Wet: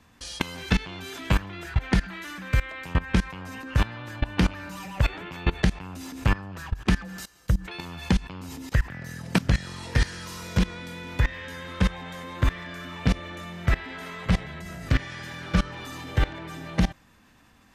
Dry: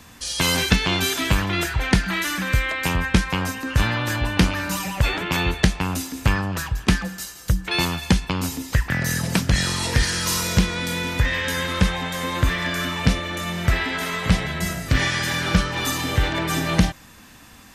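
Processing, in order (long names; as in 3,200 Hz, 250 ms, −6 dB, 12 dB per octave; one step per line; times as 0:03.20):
high-shelf EQ 4,400 Hz −10 dB
output level in coarse steps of 20 dB
level +2 dB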